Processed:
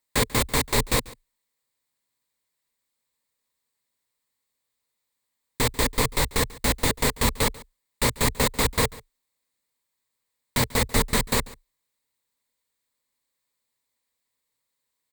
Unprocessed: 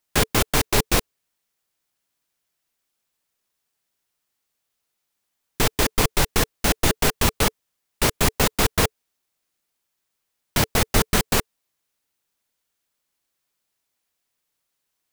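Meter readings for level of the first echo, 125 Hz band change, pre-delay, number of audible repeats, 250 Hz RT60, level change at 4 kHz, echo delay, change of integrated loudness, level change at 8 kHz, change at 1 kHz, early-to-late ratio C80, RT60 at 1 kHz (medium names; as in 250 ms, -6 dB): -21.0 dB, -2.5 dB, no reverb, 1, no reverb, -2.5 dB, 141 ms, -2.5 dB, -2.5 dB, -2.5 dB, no reverb, no reverb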